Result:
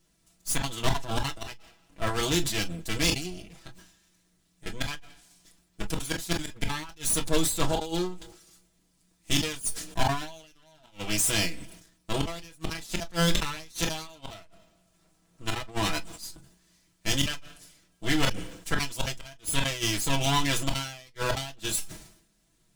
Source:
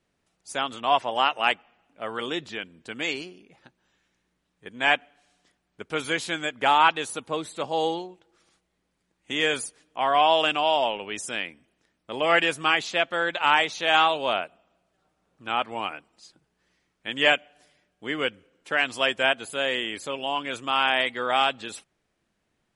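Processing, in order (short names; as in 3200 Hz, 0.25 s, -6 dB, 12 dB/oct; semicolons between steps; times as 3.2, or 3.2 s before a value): minimum comb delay 6.1 ms; flipped gate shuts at -15 dBFS, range -40 dB; tone controls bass +12 dB, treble +14 dB; soft clip -14 dBFS, distortion -19 dB; reverb, pre-delay 3 ms, DRR 5 dB; sustainer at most 82 dB/s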